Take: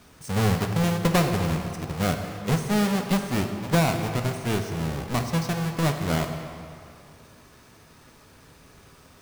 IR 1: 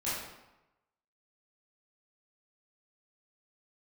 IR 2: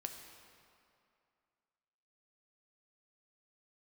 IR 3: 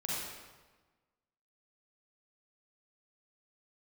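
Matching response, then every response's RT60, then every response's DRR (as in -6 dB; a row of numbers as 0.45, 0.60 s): 2; 0.95, 2.5, 1.3 s; -12.0, 4.0, -6.5 dB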